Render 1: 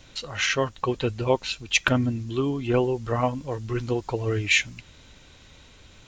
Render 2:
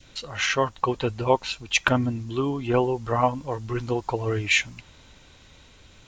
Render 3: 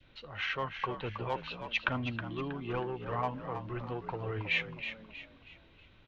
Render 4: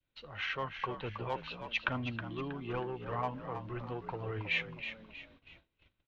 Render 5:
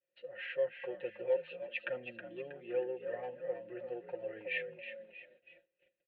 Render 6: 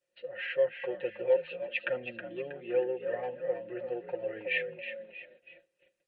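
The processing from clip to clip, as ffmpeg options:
-af "adynamicequalizer=threshold=0.01:dfrequency=910:dqfactor=1.4:tfrequency=910:tqfactor=1.4:attack=5:release=100:ratio=0.375:range=3.5:mode=boostabove:tftype=bell,volume=-1dB"
-filter_complex "[0:a]lowpass=f=3.4k:w=0.5412,lowpass=f=3.4k:w=1.3066,acrossover=split=120|850[a][b][c];[b]asoftclip=type=tanh:threshold=-25.5dB[d];[a][d][c]amix=inputs=3:normalize=0,asplit=5[e][f][g][h][i];[f]adelay=319,afreqshift=56,volume=-9dB[j];[g]adelay=638,afreqshift=112,volume=-17dB[k];[h]adelay=957,afreqshift=168,volume=-24.9dB[l];[i]adelay=1276,afreqshift=224,volume=-32.9dB[m];[e][j][k][l][m]amix=inputs=5:normalize=0,volume=-9dB"
-af "agate=range=-22dB:threshold=-56dB:ratio=16:detection=peak,volume=-2dB"
-filter_complex "[0:a]asplit=3[a][b][c];[a]bandpass=f=530:t=q:w=8,volume=0dB[d];[b]bandpass=f=1.84k:t=q:w=8,volume=-6dB[e];[c]bandpass=f=2.48k:t=q:w=8,volume=-9dB[f];[d][e][f]amix=inputs=3:normalize=0,aemphasis=mode=reproduction:type=75fm,aecho=1:1:5.6:0.92,volume=6dB"
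-af "volume=6.5dB" -ar 48000 -c:a libmp3lame -b:a 40k

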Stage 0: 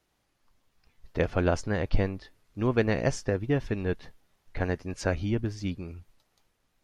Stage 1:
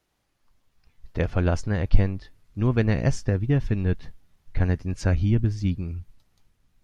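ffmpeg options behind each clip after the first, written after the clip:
-af "asubboost=boost=3.5:cutoff=240"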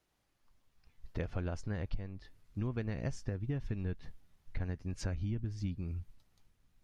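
-af "acompressor=threshold=-28dB:ratio=6,volume=-5dB"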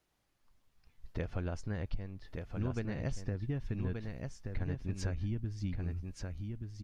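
-af "aecho=1:1:1178:0.562"

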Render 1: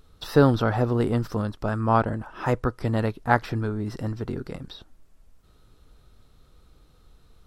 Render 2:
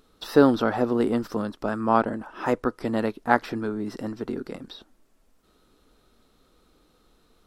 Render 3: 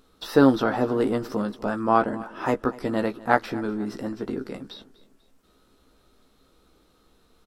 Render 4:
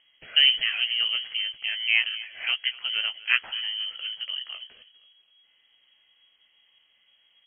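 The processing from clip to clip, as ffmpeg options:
-af "lowshelf=f=170:t=q:w=1.5:g=-10.5"
-filter_complex "[0:a]asplit=2[a][b];[b]adelay=15,volume=-7dB[c];[a][c]amix=inputs=2:normalize=0,aecho=1:1:245|490|735:0.1|0.044|0.0194"
-af "lowpass=f=2.8k:t=q:w=0.5098,lowpass=f=2.8k:t=q:w=0.6013,lowpass=f=2.8k:t=q:w=0.9,lowpass=f=2.8k:t=q:w=2.563,afreqshift=-3300,volume=-3dB"

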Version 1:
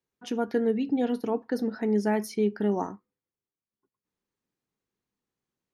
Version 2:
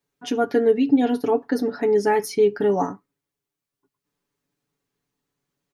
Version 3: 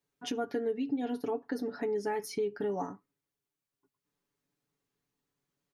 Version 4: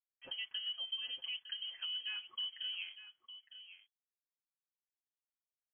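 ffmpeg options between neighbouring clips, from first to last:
-af "aecho=1:1:7:0.78,volume=5.5dB"
-af "acompressor=threshold=-29dB:ratio=2.5,volume=-5dB"
-af "aeval=exprs='sgn(val(0))*max(abs(val(0))-0.00188,0)':c=same,aecho=1:1:908:0.224,lowpass=f=2.9k:t=q:w=0.5098,lowpass=f=2.9k:t=q:w=0.6013,lowpass=f=2.9k:t=q:w=0.9,lowpass=f=2.9k:t=q:w=2.563,afreqshift=-3400,volume=-8.5dB"

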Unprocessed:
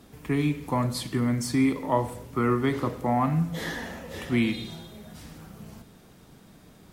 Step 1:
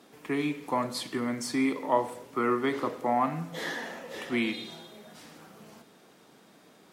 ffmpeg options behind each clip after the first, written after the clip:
-af "highpass=310,highshelf=f=9.8k:g=-8"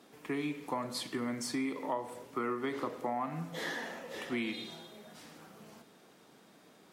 -af "acompressor=threshold=-28dB:ratio=6,volume=-3dB"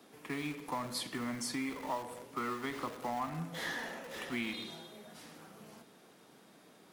-filter_complex "[0:a]acrossover=split=320|530|2400[a][b][c][d];[b]aeval=exprs='(mod(266*val(0)+1,2)-1)/266':c=same[e];[d]aexciter=amount=1.3:drive=4:freq=10k[f];[a][e][c][f]amix=inputs=4:normalize=0"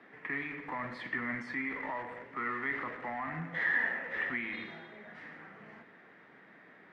-af "alimiter=level_in=7.5dB:limit=-24dB:level=0:latency=1:release=25,volume=-7.5dB,lowpass=f=1.9k:t=q:w=6.3,bandreject=f=74.15:t=h:w=4,bandreject=f=148.3:t=h:w=4,bandreject=f=222.45:t=h:w=4,bandreject=f=296.6:t=h:w=4,bandreject=f=370.75:t=h:w=4,bandreject=f=444.9:t=h:w=4,bandreject=f=519.05:t=h:w=4,bandreject=f=593.2:t=h:w=4,bandreject=f=667.35:t=h:w=4,bandreject=f=741.5:t=h:w=4,bandreject=f=815.65:t=h:w=4,bandreject=f=889.8:t=h:w=4,bandreject=f=963.95:t=h:w=4,bandreject=f=1.0381k:t=h:w=4,bandreject=f=1.11225k:t=h:w=4,bandreject=f=1.1864k:t=h:w=4,bandreject=f=1.26055k:t=h:w=4,bandreject=f=1.3347k:t=h:w=4,bandreject=f=1.40885k:t=h:w=4,bandreject=f=1.483k:t=h:w=4,bandreject=f=1.55715k:t=h:w=4,bandreject=f=1.6313k:t=h:w=4,bandreject=f=1.70545k:t=h:w=4,bandreject=f=1.7796k:t=h:w=4,bandreject=f=1.85375k:t=h:w=4,bandreject=f=1.9279k:t=h:w=4,bandreject=f=2.00205k:t=h:w=4,bandreject=f=2.0762k:t=h:w=4,bandreject=f=2.15035k:t=h:w=4,bandreject=f=2.2245k:t=h:w=4,bandreject=f=2.29865k:t=h:w=4,bandreject=f=2.3728k:t=h:w=4,bandreject=f=2.44695k:t=h:w=4,bandreject=f=2.5211k:t=h:w=4,bandreject=f=2.59525k:t=h:w=4,bandreject=f=2.6694k:t=h:w=4,bandreject=f=2.74355k:t=h:w=4,bandreject=f=2.8177k:t=h:w=4,bandreject=f=2.89185k:t=h:w=4,bandreject=f=2.966k:t=h:w=4"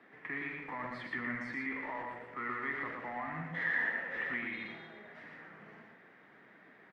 -af "aecho=1:1:117:0.668,volume=-3.5dB"

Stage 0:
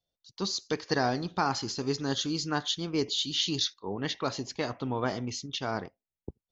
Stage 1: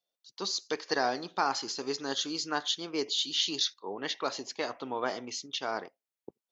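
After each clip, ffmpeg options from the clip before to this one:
-af "highpass=380"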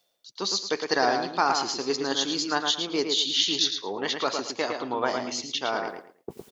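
-filter_complex "[0:a]areverse,acompressor=mode=upward:threshold=-35dB:ratio=2.5,areverse,tremolo=f=110:d=0.182,asplit=2[a][b];[b]adelay=110,lowpass=f=4.4k:p=1,volume=-5dB,asplit=2[c][d];[d]adelay=110,lowpass=f=4.4k:p=1,volume=0.26,asplit=2[e][f];[f]adelay=110,lowpass=f=4.4k:p=1,volume=0.26[g];[a][c][e][g]amix=inputs=4:normalize=0,volume=6dB"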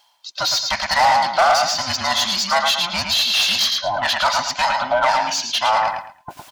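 -filter_complex "[0:a]afftfilt=real='real(if(between(b,1,1008),(2*floor((b-1)/24)+1)*24-b,b),0)':imag='imag(if(between(b,1,1008),(2*floor((b-1)/24)+1)*24-b,b),0)*if(between(b,1,1008),-1,1)':win_size=2048:overlap=0.75,asplit=2[a][b];[b]highpass=f=720:p=1,volume=21dB,asoftclip=type=tanh:threshold=-9dB[c];[a][c]amix=inputs=2:normalize=0,lowpass=f=5.2k:p=1,volume=-6dB,lowshelf=f=510:t=q:w=3:g=-6"

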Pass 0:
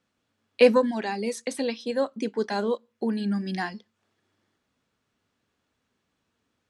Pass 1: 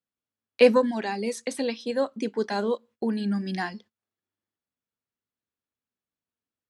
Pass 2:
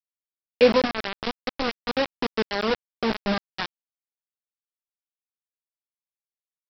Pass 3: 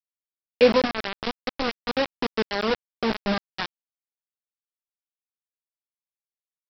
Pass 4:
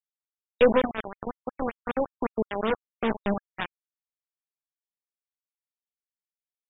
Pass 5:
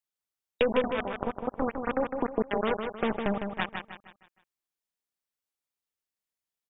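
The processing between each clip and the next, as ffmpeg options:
-af "agate=range=-20dB:threshold=-50dB:ratio=16:detection=peak"
-af "highpass=f=110:w=0.5412,highpass=f=110:w=1.3066,highshelf=f=3.8k:g=-7.5,aresample=11025,acrusher=bits=3:mix=0:aa=0.000001,aresample=44100"
-af anull
-af "acontrast=62,aeval=exprs='0.794*(cos(1*acos(clip(val(0)/0.794,-1,1)))-cos(1*PI/2))+0.0708*(cos(4*acos(clip(val(0)/0.794,-1,1)))-cos(4*PI/2))+0.0631*(cos(5*acos(clip(val(0)/0.794,-1,1)))-cos(5*PI/2))+0.126*(cos(7*acos(clip(val(0)/0.794,-1,1)))-cos(7*PI/2))':c=same,afftfilt=real='re*lt(b*sr/1024,970*pow(3800/970,0.5+0.5*sin(2*PI*5.3*pts/sr)))':imag='im*lt(b*sr/1024,970*pow(3800/970,0.5+0.5*sin(2*PI*5.3*pts/sr)))':win_size=1024:overlap=0.75,volume=-7.5dB"
-filter_complex "[0:a]acompressor=threshold=-27dB:ratio=4,asplit=2[a][b];[b]aecho=0:1:156|312|468|624|780:0.501|0.2|0.0802|0.0321|0.0128[c];[a][c]amix=inputs=2:normalize=0,volume=3dB"

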